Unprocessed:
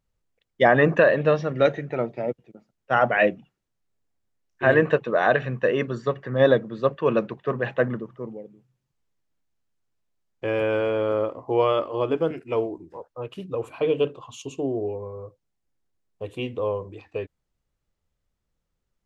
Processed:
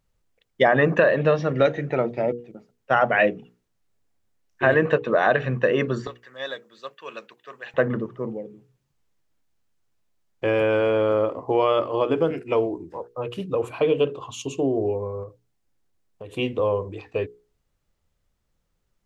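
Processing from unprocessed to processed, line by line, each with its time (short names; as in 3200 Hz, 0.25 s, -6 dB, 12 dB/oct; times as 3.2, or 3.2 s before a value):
6.07–7.74 differentiator
15.23–16.35 compressor, threshold -39 dBFS
whole clip: notches 60/120/180/240/300/360/420/480 Hz; compressor 2:1, threshold -24 dBFS; gain +5.5 dB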